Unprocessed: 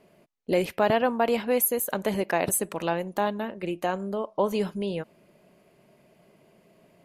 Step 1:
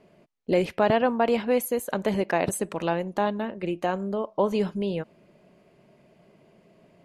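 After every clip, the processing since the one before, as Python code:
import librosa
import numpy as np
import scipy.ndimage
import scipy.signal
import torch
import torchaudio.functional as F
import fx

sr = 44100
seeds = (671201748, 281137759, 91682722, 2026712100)

y = scipy.signal.sosfilt(scipy.signal.bessel(2, 6700.0, 'lowpass', norm='mag', fs=sr, output='sos'), x)
y = fx.low_shelf(y, sr, hz=430.0, db=3.0)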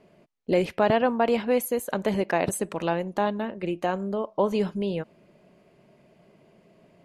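y = x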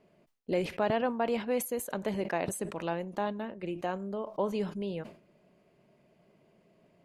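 y = fx.sustainer(x, sr, db_per_s=130.0)
y = y * librosa.db_to_amplitude(-7.5)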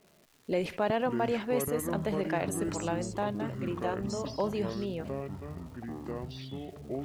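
y = fx.dmg_crackle(x, sr, seeds[0], per_s=430.0, level_db=-50.0)
y = fx.echo_pitch(y, sr, ms=330, semitones=-7, count=3, db_per_echo=-6.0)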